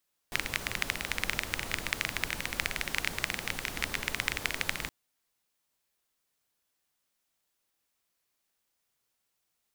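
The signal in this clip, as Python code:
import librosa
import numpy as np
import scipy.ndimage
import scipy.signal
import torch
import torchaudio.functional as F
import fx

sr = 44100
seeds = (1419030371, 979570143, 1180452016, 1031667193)

y = fx.rain(sr, seeds[0], length_s=4.57, drops_per_s=17.0, hz=2100.0, bed_db=-4)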